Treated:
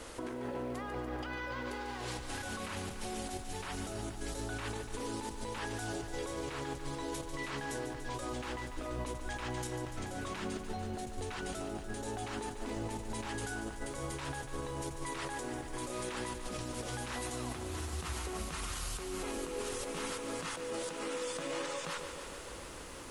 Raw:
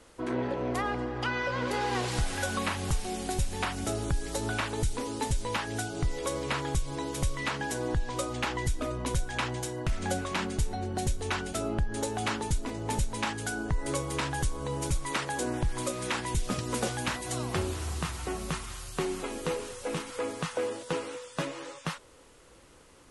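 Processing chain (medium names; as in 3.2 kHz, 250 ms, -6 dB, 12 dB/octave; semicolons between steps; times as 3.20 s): peaking EQ 150 Hz -4 dB 1 oct; compressor with a negative ratio -41 dBFS, ratio -1; peak limiter -32 dBFS, peak gain reduction 8.5 dB; bit-crushed delay 145 ms, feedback 80%, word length 11-bit, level -9.5 dB; trim +1.5 dB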